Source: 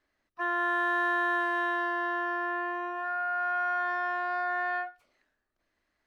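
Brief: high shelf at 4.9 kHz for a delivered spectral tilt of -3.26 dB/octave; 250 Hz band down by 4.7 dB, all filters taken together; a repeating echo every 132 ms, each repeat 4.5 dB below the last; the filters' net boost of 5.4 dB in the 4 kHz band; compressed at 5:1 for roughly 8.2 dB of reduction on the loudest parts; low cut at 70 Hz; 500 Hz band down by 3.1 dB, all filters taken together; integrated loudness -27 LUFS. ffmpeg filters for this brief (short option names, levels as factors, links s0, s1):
-af "highpass=70,equalizer=f=250:t=o:g=-4.5,equalizer=f=500:t=o:g=-5,equalizer=f=4000:t=o:g=4,highshelf=f=4900:g=7.5,acompressor=threshold=0.0178:ratio=5,aecho=1:1:132|264|396|528|660|792|924|1056|1188:0.596|0.357|0.214|0.129|0.0772|0.0463|0.0278|0.0167|0.01,volume=2.24"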